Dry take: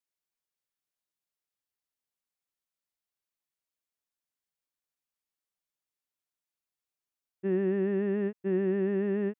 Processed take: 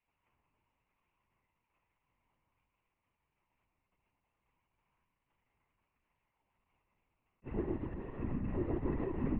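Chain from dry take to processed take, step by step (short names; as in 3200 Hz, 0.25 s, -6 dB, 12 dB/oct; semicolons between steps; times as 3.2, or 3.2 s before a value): per-bin compression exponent 0.4; treble ducked by the level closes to 1100 Hz, closed at -23 dBFS; 7.69–8.17 HPF 830 Hz 6 dB/oct; crossover distortion -53 dBFS; fixed phaser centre 2400 Hz, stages 8; FDN reverb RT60 1.6 s, low-frequency decay 1.3×, high-frequency decay 0.55×, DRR -7.5 dB; LPC vocoder at 8 kHz whisper; attack slew limiter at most 560 dB/s; gain -6.5 dB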